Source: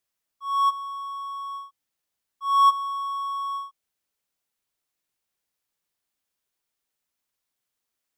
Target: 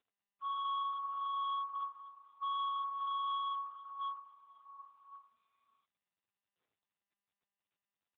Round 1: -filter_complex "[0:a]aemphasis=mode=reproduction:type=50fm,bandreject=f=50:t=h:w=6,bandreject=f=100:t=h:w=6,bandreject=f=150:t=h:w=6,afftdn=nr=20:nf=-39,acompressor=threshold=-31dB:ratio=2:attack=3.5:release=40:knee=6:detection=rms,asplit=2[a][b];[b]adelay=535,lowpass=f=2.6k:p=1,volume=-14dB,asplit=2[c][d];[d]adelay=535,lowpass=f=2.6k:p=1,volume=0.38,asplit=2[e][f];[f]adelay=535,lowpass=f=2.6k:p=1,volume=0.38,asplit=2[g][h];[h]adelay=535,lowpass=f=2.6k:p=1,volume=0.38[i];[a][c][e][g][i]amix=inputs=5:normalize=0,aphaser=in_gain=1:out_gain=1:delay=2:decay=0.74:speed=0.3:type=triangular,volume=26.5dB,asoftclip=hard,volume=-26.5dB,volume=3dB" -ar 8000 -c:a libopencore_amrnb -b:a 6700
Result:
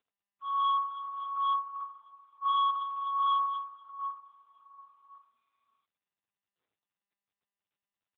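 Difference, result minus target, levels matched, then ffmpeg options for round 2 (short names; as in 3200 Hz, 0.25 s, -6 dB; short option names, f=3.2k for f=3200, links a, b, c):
overloaded stage: distortion -4 dB
-filter_complex "[0:a]aemphasis=mode=reproduction:type=50fm,bandreject=f=50:t=h:w=6,bandreject=f=100:t=h:w=6,bandreject=f=150:t=h:w=6,afftdn=nr=20:nf=-39,acompressor=threshold=-31dB:ratio=2:attack=3.5:release=40:knee=6:detection=rms,asplit=2[a][b];[b]adelay=535,lowpass=f=2.6k:p=1,volume=-14dB,asplit=2[c][d];[d]adelay=535,lowpass=f=2.6k:p=1,volume=0.38,asplit=2[e][f];[f]adelay=535,lowpass=f=2.6k:p=1,volume=0.38,asplit=2[g][h];[h]adelay=535,lowpass=f=2.6k:p=1,volume=0.38[i];[a][c][e][g][i]amix=inputs=5:normalize=0,aphaser=in_gain=1:out_gain=1:delay=2:decay=0.74:speed=0.3:type=triangular,volume=35.5dB,asoftclip=hard,volume=-35.5dB,volume=3dB" -ar 8000 -c:a libopencore_amrnb -b:a 6700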